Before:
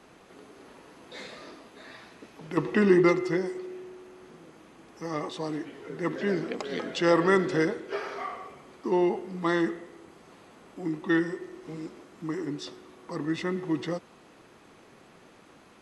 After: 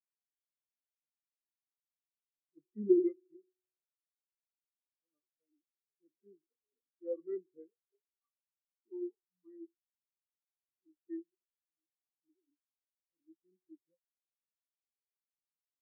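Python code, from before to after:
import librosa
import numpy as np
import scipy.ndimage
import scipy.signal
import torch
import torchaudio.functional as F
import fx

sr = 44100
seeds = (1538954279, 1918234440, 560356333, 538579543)

y = fx.spectral_expand(x, sr, expansion=4.0)
y = F.gain(torch.from_numpy(y), -7.0).numpy()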